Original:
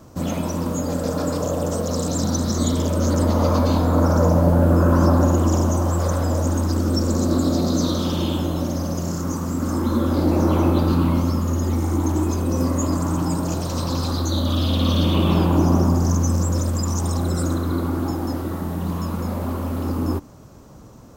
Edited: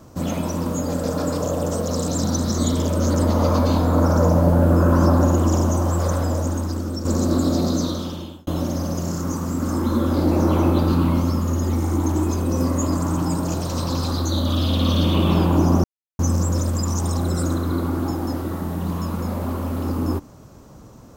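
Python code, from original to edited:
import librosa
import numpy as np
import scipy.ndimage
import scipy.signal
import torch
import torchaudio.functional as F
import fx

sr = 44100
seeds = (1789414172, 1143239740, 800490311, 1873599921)

y = fx.edit(x, sr, fx.fade_out_to(start_s=6.15, length_s=0.9, floor_db=-8.5),
    fx.fade_out_span(start_s=7.66, length_s=0.81),
    fx.silence(start_s=15.84, length_s=0.35), tone=tone)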